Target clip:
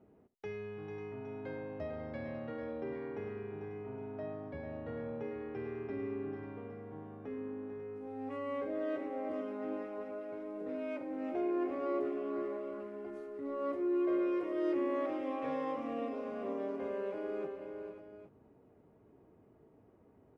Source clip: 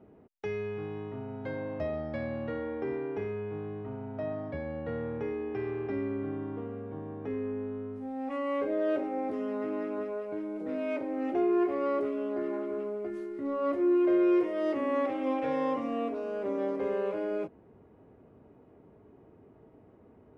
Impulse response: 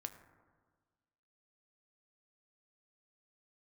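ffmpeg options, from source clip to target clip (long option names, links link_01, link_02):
-af "aecho=1:1:73|445|544|813:0.126|0.355|0.251|0.211,volume=-7.5dB"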